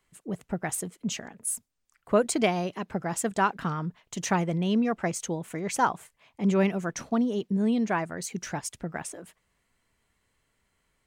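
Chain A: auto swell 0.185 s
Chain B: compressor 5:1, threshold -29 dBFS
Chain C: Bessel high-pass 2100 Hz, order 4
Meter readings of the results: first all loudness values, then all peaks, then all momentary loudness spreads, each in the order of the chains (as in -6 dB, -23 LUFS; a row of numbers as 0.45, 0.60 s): -30.0, -34.0, -37.5 LUFS; -11.0, -18.5, -15.5 dBFS; 17, 5, 16 LU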